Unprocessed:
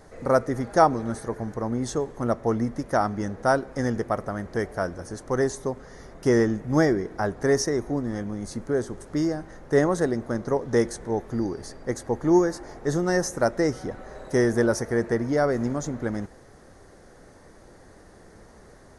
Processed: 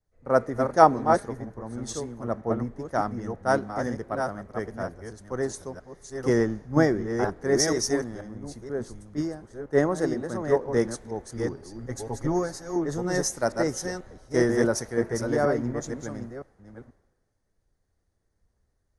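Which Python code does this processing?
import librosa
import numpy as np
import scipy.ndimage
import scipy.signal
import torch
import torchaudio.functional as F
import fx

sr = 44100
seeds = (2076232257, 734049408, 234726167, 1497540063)

y = fx.reverse_delay(x, sr, ms=483, wet_db=-3.0)
y = fx.comb(y, sr, ms=7.3, depth=0.67, at=(11.8, 12.76))
y = fx.band_widen(y, sr, depth_pct=100)
y = F.gain(torch.from_numpy(y), -4.5).numpy()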